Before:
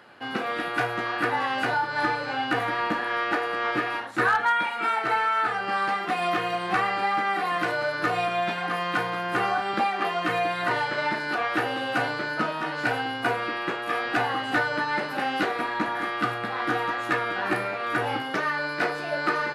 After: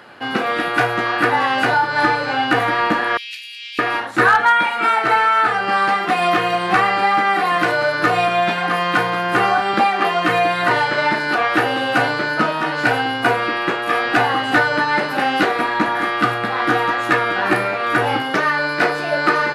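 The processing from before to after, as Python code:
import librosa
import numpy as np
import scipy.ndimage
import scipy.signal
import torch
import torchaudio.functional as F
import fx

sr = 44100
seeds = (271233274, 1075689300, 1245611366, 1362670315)

y = fx.cheby1_highpass(x, sr, hz=2500.0, order=5, at=(3.17, 3.79))
y = y * librosa.db_to_amplitude(9.0)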